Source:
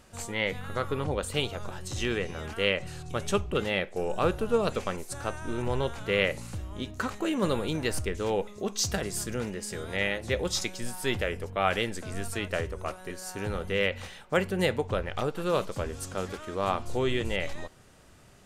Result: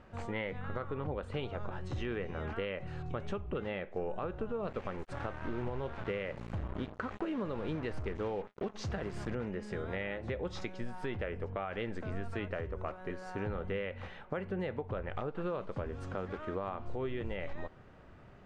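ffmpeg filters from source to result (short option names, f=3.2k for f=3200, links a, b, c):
-filter_complex "[0:a]asettb=1/sr,asplit=3[a][b][c];[a]atrim=end=4.684[d];[b]atrim=start=4.68:end=9.35,asetpts=PTS-STARTPTS,afade=t=in:d=0.004:c=qsin,afade=t=out:st=4.666:d=0.004:c=qsin,acrusher=bits=5:mix=0:aa=0.5[e];[c]atrim=start=9.346[f];[d][e]acrossfade=d=0.004:c1=hsin:c2=qsin[g];[g][f]acrossfade=d=0.004:c1=qsin:c2=hsin,lowpass=1.9k,alimiter=limit=-23dB:level=0:latency=1:release=295,acompressor=threshold=-35dB:ratio=3,volume=1dB"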